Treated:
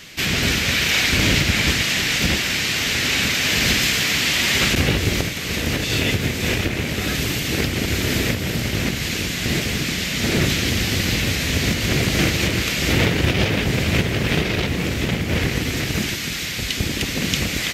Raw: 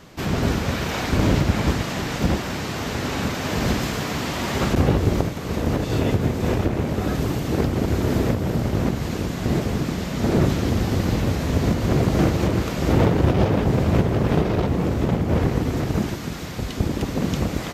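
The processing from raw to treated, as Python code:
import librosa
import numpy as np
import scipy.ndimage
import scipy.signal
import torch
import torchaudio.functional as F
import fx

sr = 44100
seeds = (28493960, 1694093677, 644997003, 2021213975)

y = fx.high_shelf_res(x, sr, hz=1500.0, db=13.0, q=1.5)
y = F.gain(torch.from_numpy(y), -1.5).numpy()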